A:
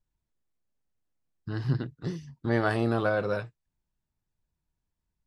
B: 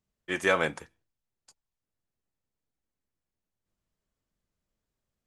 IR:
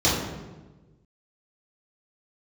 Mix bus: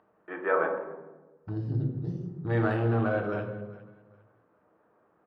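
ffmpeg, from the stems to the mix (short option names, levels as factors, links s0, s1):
-filter_complex "[0:a]afwtdn=0.01,volume=0.631,asplit=3[s0][s1][s2];[s1]volume=0.112[s3];[s2]volume=0.133[s4];[1:a]lowpass=f=1400:w=0.5412,lowpass=f=1400:w=1.3066,acompressor=mode=upward:threshold=0.0112:ratio=2.5,highpass=400,volume=1.12,asplit=2[s5][s6];[s6]volume=0.1[s7];[2:a]atrim=start_sample=2205[s8];[s3][s7]amix=inputs=2:normalize=0[s9];[s9][s8]afir=irnorm=-1:irlink=0[s10];[s4]aecho=0:1:408|816|1224|1632:1|0.26|0.0676|0.0176[s11];[s0][s5][s10][s11]amix=inputs=4:normalize=0,lowshelf=f=480:g=-3.5"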